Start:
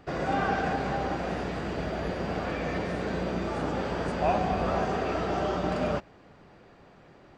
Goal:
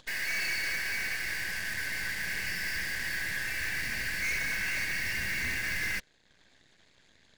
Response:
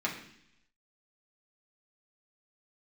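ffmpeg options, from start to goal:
-af "afftfilt=real='real(if(lt(b,272),68*(eq(floor(b/68),0)*2+eq(floor(b/68),1)*0+eq(floor(b/68),2)*3+eq(floor(b/68),3)*1)+mod(b,68),b),0)':imag='imag(if(lt(b,272),68*(eq(floor(b/68),0)*2+eq(floor(b/68),1)*0+eq(floor(b/68),2)*3+eq(floor(b/68),3)*1)+mod(b,68),b),0)':win_size=2048:overlap=0.75,acompressor=mode=upward:threshold=-47dB:ratio=2.5,asubboost=boost=12:cutoff=180,aeval=exprs='0.0422*(cos(1*acos(clip(val(0)/0.0422,-1,1)))-cos(1*PI/2))+0.0106*(cos(6*acos(clip(val(0)/0.0422,-1,1)))-cos(6*PI/2))+0.0075*(cos(7*acos(clip(val(0)/0.0422,-1,1)))-cos(7*PI/2))':c=same,volume=-3dB"

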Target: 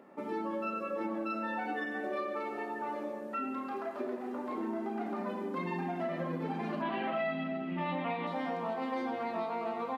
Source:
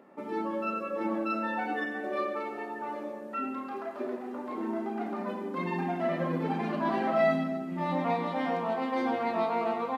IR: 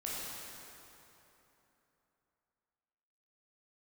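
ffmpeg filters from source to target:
-filter_complex "[0:a]acompressor=threshold=-32dB:ratio=6,asettb=1/sr,asplit=3[a][b][c];[a]atrim=end=6.824[d];[b]atrim=start=6.82:end=8.27,asetpts=PTS-STARTPTS,afade=t=in:d=0.004:c=qsin,afade=t=out:st=1.446:d=0.004:c=qsin,lowpass=f=2.9k:t=q:w=3.3[e];[c]atrim=start=8.266[f];[d][e]acrossfade=d=0.004:c1=hsin:c2=qsin[g];[g][f]acrossfade=d=0.004:c1=qsin:c2=hsin"

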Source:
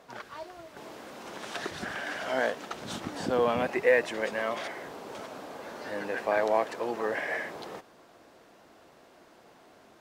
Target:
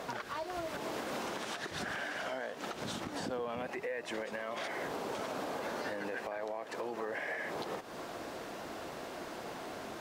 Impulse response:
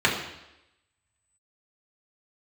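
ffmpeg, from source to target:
-af "acompressor=threshold=-45dB:ratio=3,alimiter=level_in=18dB:limit=-24dB:level=0:latency=1:release=226,volume=-18dB,volume=13dB"

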